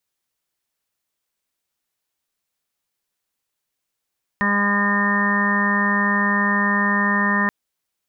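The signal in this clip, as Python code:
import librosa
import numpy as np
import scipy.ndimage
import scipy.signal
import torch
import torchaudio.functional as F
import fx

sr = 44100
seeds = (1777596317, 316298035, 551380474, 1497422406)

y = fx.additive_steady(sr, length_s=3.08, hz=203.0, level_db=-21, upper_db=(-12.5, -12.0, -14.0, -3, -6, -17.0, -10.5, 1.5))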